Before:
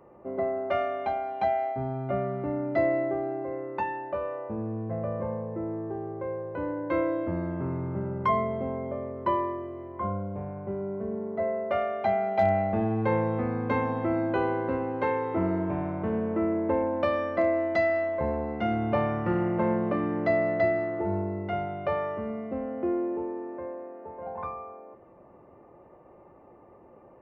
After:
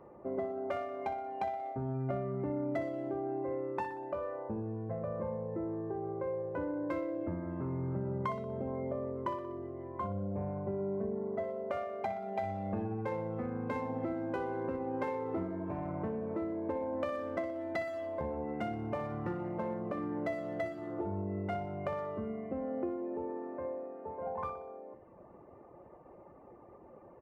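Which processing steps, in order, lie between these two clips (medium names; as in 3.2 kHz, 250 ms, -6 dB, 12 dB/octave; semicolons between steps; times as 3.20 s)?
local Wiener filter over 9 samples; reverb removal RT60 0.68 s; compression, threshold -34 dBFS, peak gain reduction 14 dB; feedback delay 61 ms, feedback 56%, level -12 dB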